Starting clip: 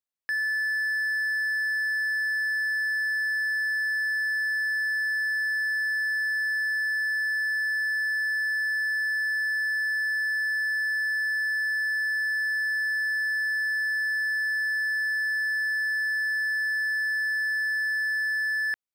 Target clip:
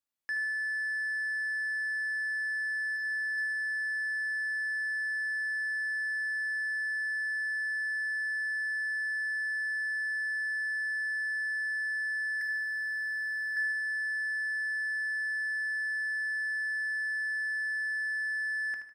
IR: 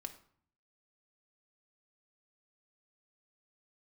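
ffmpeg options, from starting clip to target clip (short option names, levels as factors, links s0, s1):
-filter_complex "[0:a]asettb=1/sr,asplit=3[s0][s1][s2];[s0]atrim=end=2.964[s3];[s1]atrim=start=2.96:end=3.38,asetpts=PTS-STARTPTS,afade=t=in:d=0.004:c=qsin,afade=t=out:st=0.416:d=0.004:c=qsin,highshelf=f=4600:g=9[s4];[s2]atrim=start=3.376[s5];[s3][s4]acrossfade=d=0.004:c1=hsin:c2=qsin[s6];[s6][s5]acrossfade=d=0.004:c1=qsin:c2=hsin,asettb=1/sr,asplit=3[s7][s8][s9];[s7]atrim=end=12.414[s10];[s8]atrim=start=12.41:end=13.57,asetpts=PTS-STARTPTS,afade=t=in:d=0.004:c=qsin,afade=t=out:st=1.156:d=0.004:c=qsin,acrossover=split=1900|5200[s11][s12][s13];[s11]acompressor=threshold=0.0158:ratio=4[s14];[s12]acompressor=threshold=0.01:ratio=4[s15];[s13]acompressor=threshold=0.00251:ratio=4[s16];[s14][s15][s16]amix=inputs=3:normalize=0[s17];[s9]atrim=start=13.566[s18];[s10][s17]acrossfade=d=0.004:c1=hsin:c2=qsin[s19];[s19][s18]acrossfade=d=0.004:c1=qsin:c2=hsin,asoftclip=type=tanh:threshold=0.0251,aecho=1:1:76|152|228|304:0.355|0.138|0.054|0.021[s20];[1:a]atrim=start_sample=2205,afade=t=out:st=0.25:d=0.01,atrim=end_sample=11466[s21];[s20][s21]afir=irnorm=-1:irlink=0,volume=1.58"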